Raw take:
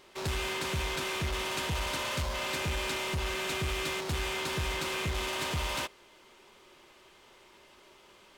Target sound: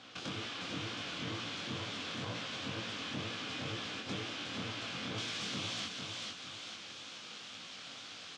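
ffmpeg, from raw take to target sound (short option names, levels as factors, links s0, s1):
-filter_complex "[0:a]aeval=exprs='abs(val(0))':c=same,highpass=f=110:w=0.5412,highpass=f=110:w=1.3066,equalizer=f=150:t=q:w=4:g=-7,equalizer=f=390:t=q:w=4:g=-8,equalizer=f=620:t=q:w=4:g=-5,equalizer=f=910:t=q:w=4:g=-9,equalizer=f=1900:t=q:w=4:g=-6,equalizer=f=3300:t=q:w=4:g=5,lowpass=f=6400:w=0.5412,lowpass=f=6400:w=1.3066,acompressor=threshold=0.00562:ratio=6,asetnsamples=n=441:p=0,asendcmd='5.18 highshelf g 2.5',highshelf=f=3200:g=-9.5,aecho=1:1:449|898|1347|1796:0.501|0.17|0.0579|0.0197,acrossover=split=400[s0][s1];[s1]acompressor=threshold=0.00158:ratio=2[s2];[s0][s2]amix=inputs=2:normalize=0,flanger=delay=17:depth=6.2:speed=2.1,volume=6.31"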